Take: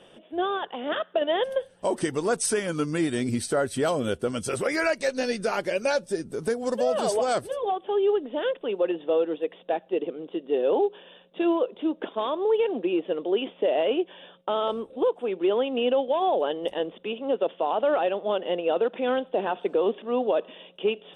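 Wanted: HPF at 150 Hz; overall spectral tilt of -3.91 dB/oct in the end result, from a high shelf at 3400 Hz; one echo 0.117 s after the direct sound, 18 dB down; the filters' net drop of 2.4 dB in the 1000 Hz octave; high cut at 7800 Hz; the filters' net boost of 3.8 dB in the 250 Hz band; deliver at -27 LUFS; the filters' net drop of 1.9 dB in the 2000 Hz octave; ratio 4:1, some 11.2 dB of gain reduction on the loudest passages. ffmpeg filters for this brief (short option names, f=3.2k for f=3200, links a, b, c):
-af "highpass=150,lowpass=7.8k,equalizer=f=250:t=o:g=6,equalizer=f=1k:t=o:g=-4,equalizer=f=2k:t=o:g=-4,highshelf=f=3.4k:g=8.5,acompressor=threshold=-32dB:ratio=4,aecho=1:1:117:0.126,volume=7.5dB"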